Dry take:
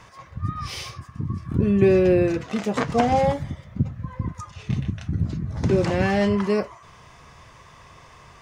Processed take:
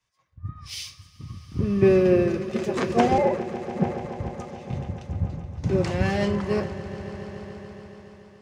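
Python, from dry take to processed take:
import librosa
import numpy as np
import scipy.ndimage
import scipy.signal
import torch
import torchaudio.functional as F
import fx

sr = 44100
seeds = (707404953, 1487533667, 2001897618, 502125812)

y = fx.sine_speech(x, sr, at=(3.18, 3.85))
y = fx.echo_swell(y, sr, ms=142, loudest=5, wet_db=-13)
y = fx.band_widen(y, sr, depth_pct=100)
y = y * librosa.db_to_amplitude(-4.5)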